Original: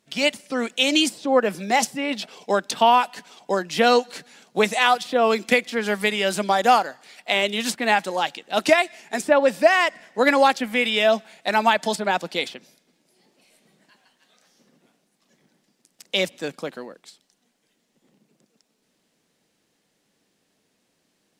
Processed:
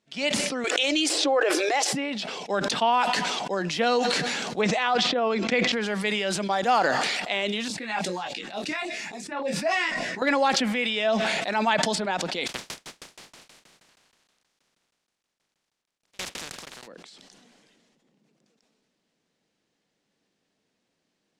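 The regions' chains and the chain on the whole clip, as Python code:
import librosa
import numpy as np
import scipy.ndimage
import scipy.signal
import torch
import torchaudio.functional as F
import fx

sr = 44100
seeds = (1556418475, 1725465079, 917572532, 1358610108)

y = fx.chain(x, sr, fx.brickwall_highpass(low_hz=280.0),
    fx.notch(hz=940.0, q=11.0),
    fx.pre_swell(db_per_s=22.0), at=(0.64, 1.93))
y = fx.chain(y, sr, fx.lowpass(hz=7600.0, slope=24),
    fx.high_shelf(hz=4100.0, db=-9.0),
    fx.sustainer(db_per_s=38.0), at=(4.61, 5.72))
y = fx.chain(y, sr, fx.filter_lfo_notch(shape='saw_down', hz=3.5, low_hz=330.0, high_hz=2100.0, q=0.96),
    fx.notch(hz=3100.0, q=13.0),
    fx.detune_double(cents=12), at=(7.68, 10.22))
y = fx.spec_flatten(y, sr, power=0.2, at=(12.46, 16.86), fade=0.02)
y = fx.tremolo_decay(y, sr, direction='decaying', hz=6.3, depth_db=39, at=(12.46, 16.86), fade=0.02)
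y = scipy.signal.sosfilt(scipy.signal.butter(2, 6800.0, 'lowpass', fs=sr, output='sos'), y)
y = fx.sustainer(y, sr, db_per_s=22.0)
y = y * 10.0 ** (-6.5 / 20.0)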